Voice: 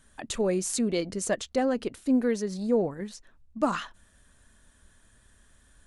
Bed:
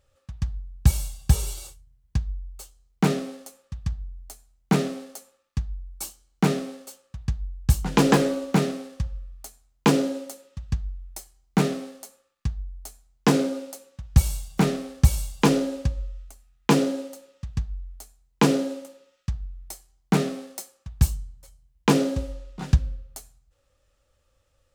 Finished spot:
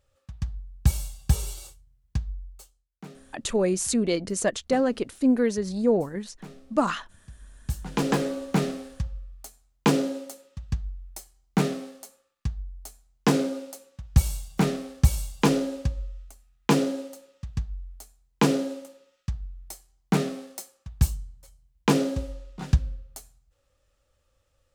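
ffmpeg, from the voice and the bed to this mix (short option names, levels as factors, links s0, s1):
-filter_complex "[0:a]adelay=3150,volume=1.41[s0];[1:a]volume=7.5,afade=t=out:st=2.43:d=0.45:silence=0.105925,afade=t=in:st=7.25:d=1.46:silence=0.0944061[s1];[s0][s1]amix=inputs=2:normalize=0"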